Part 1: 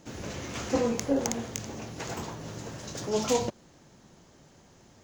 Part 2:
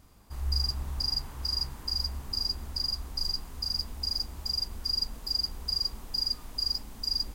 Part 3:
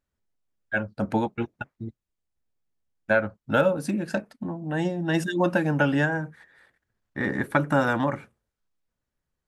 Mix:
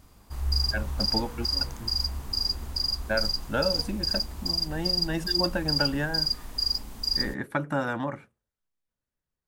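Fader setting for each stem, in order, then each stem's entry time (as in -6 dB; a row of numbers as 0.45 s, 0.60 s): -19.5 dB, +3.0 dB, -6.0 dB; 0.45 s, 0.00 s, 0.00 s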